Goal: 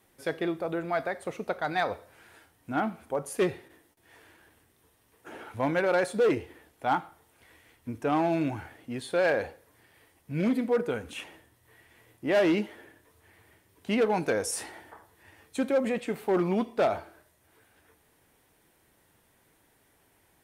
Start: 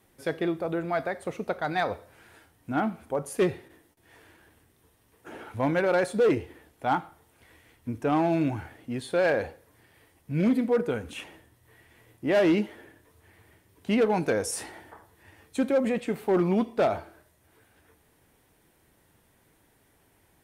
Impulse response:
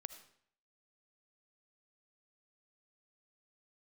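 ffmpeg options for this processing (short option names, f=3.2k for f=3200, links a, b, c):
-af "lowshelf=f=320:g=-5"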